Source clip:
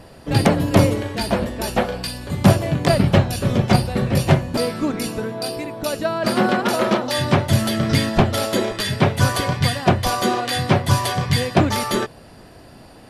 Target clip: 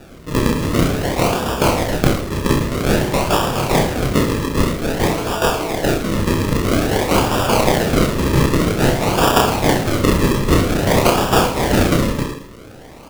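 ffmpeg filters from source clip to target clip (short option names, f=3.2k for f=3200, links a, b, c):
-filter_complex "[0:a]aeval=exprs='0.119*(abs(mod(val(0)/0.119+3,4)-2)-1)':c=same,crystalizer=i=7.5:c=0,asplit=2[a][b];[b]aecho=0:1:273:0.473[c];[a][c]amix=inputs=2:normalize=0,acrusher=samples=41:mix=1:aa=0.000001:lfo=1:lforange=41:lforate=0.51,asplit=2[d][e];[e]aecho=0:1:30|66|109.2|161|223.2:0.631|0.398|0.251|0.158|0.1[f];[d][f]amix=inputs=2:normalize=0,volume=-3.5dB"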